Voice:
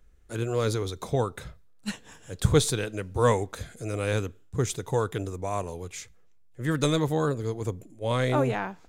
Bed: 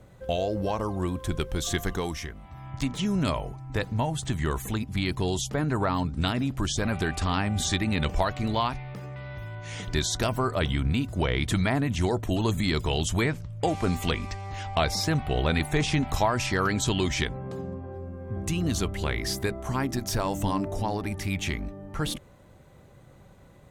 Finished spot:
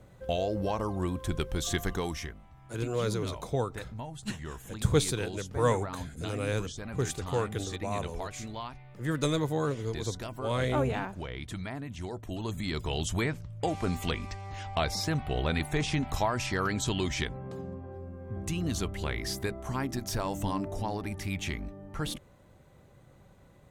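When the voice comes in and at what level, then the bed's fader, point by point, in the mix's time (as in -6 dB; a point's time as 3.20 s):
2.40 s, -4.0 dB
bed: 2.28 s -2.5 dB
2.57 s -13 dB
12.04 s -13 dB
13.05 s -4.5 dB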